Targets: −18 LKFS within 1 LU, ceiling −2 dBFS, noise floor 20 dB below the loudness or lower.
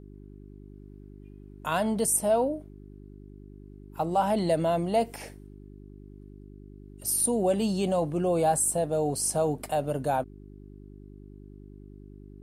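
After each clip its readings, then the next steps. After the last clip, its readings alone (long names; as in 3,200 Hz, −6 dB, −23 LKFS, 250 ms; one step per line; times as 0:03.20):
mains hum 50 Hz; hum harmonics up to 400 Hz; level of the hum −45 dBFS; integrated loudness −26.5 LKFS; sample peak −13.5 dBFS; target loudness −18.0 LKFS
→ hum removal 50 Hz, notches 8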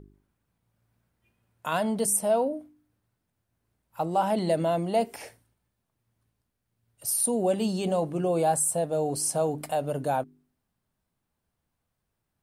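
mains hum none found; integrated loudness −26.5 LKFS; sample peak −13.5 dBFS; target loudness −18.0 LKFS
→ level +8.5 dB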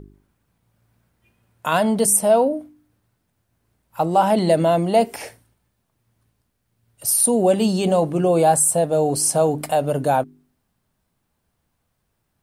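integrated loudness −18.0 LKFS; sample peak −5.0 dBFS; background noise floor −73 dBFS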